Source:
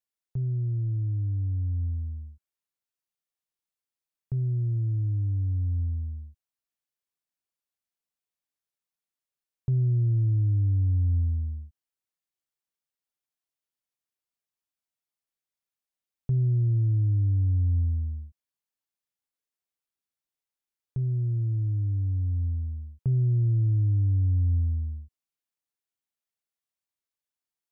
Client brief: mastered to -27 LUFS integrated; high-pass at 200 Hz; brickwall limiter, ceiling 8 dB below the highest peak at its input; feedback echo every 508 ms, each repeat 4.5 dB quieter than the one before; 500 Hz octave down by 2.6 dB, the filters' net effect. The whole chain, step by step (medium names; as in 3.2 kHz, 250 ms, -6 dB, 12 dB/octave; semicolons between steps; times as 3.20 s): high-pass 200 Hz; peaking EQ 500 Hz -4 dB; peak limiter -36 dBFS; feedback delay 508 ms, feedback 60%, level -4.5 dB; trim +14 dB